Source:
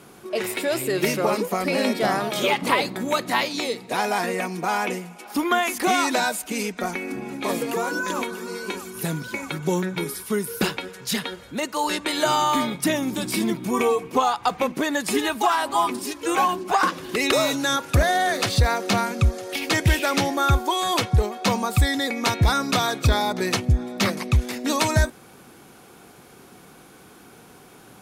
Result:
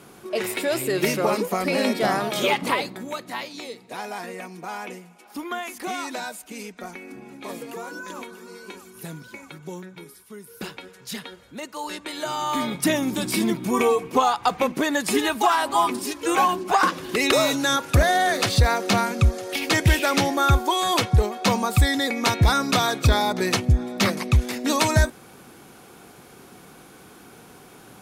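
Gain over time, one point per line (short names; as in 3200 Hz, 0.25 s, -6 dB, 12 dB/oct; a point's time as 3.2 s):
2.55 s 0 dB
3.19 s -9.5 dB
9.23 s -9.5 dB
10.34 s -17 dB
10.82 s -8 dB
12.33 s -8 dB
12.77 s +1 dB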